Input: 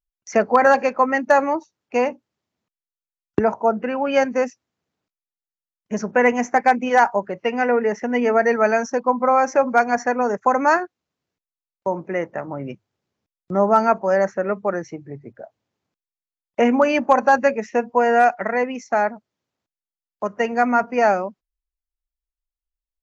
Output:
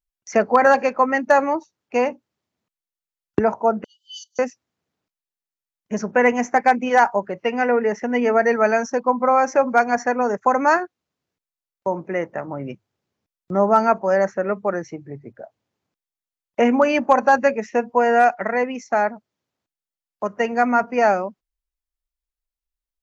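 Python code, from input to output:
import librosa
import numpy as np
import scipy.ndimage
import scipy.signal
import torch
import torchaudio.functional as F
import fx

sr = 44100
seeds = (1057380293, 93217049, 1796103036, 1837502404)

y = fx.brickwall_highpass(x, sr, low_hz=2900.0, at=(3.84, 4.39))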